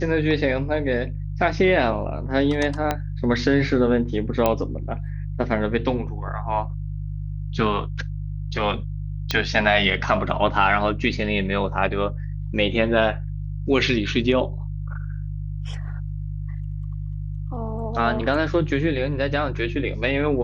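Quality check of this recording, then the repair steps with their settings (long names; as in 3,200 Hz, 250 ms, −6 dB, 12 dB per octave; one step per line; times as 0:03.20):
mains hum 50 Hz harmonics 3 −29 dBFS
0:02.91: click −8 dBFS
0:04.46: click −6 dBFS
0:09.31: click −7 dBFS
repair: click removal
hum removal 50 Hz, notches 3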